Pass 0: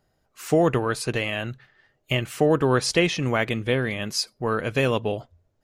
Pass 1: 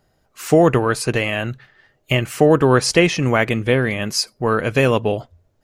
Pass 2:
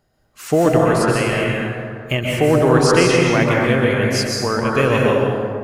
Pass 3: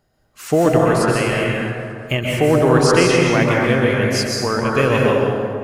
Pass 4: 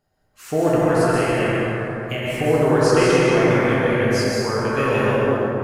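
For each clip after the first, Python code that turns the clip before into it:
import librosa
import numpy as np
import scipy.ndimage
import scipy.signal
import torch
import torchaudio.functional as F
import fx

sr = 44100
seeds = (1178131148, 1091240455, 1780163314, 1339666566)

y1 = fx.dynamic_eq(x, sr, hz=3600.0, q=3.0, threshold_db=-45.0, ratio=4.0, max_db=-6)
y1 = F.gain(torch.from_numpy(y1), 6.5).numpy()
y2 = fx.rev_plate(y1, sr, seeds[0], rt60_s=2.2, hf_ratio=0.45, predelay_ms=115, drr_db=-3.0)
y2 = F.gain(torch.from_numpy(y2), -3.0).numpy()
y3 = fx.echo_feedback(y2, sr, ms=222, feedback_pct=56, wet_db=-20.0)
y4 = fx.rev_plate(y3, sr, seeds[1], rt60_s=2.7, hf_ratio=0.35, predelay_ms=0, drr_db=-4.0)
y4 = F.gain(torch.from_numpy(y4), -8.0).numpy()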